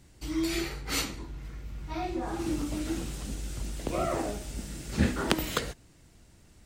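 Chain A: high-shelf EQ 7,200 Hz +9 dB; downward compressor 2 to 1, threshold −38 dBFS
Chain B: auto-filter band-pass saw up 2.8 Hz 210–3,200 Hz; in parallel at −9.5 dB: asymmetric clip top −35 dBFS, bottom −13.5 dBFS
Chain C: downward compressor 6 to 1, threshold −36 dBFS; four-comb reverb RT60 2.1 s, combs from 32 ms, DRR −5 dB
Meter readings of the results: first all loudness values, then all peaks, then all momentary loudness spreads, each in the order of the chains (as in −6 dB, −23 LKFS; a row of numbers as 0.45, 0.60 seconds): −38.0, −37.5, −35.5 LKFS; −9.5, −9.5, −14.0 dBFS; 11, 16, 6 LU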